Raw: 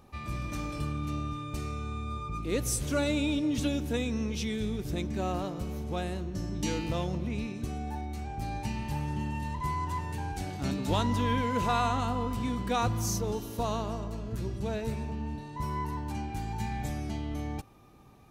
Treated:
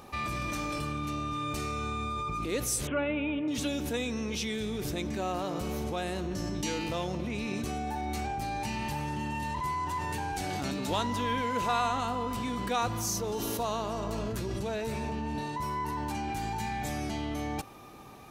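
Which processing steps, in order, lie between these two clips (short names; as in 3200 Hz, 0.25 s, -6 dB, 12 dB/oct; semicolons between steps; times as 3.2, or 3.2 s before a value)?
low shelf 220 Hz -11.5 dB; in parallel at +2 dB: negative-ratio compressor -44 dBFS, ratio -1; 2.87–3.48 on the sum: steep low-pass 3100 Hz 72 dB/oct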